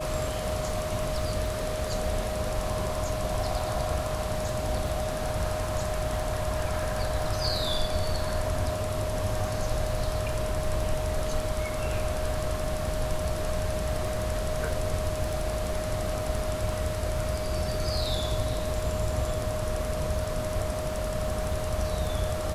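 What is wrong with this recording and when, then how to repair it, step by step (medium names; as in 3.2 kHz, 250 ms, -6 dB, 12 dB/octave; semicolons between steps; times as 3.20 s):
crackle 23 per s -35 dBFS
whine 620 Hz -32 dBFS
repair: de-click; band-stop 620 Hz, Q 30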